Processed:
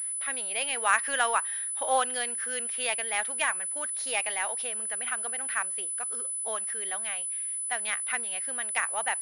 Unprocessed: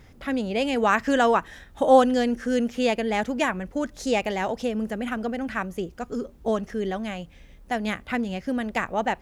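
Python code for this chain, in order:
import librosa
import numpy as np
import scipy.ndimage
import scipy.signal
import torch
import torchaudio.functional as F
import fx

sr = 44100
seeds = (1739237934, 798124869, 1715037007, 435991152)

p1 = scipy.signal.sosfilt(scipy.signal.butter(2, 1200.0, 'highpass', fs=sr, output='sos'), x)
p2 = fx.quant_float(p1, sr, bits=2)
p3 = p1 + (p2 * 10.0 ** (-5.5 / 20.0))
p4 = fx.pwm(p3, sr, carrier_hz=10000.0)
y = p4 * 10.0 ** (-3.0 / 20.0)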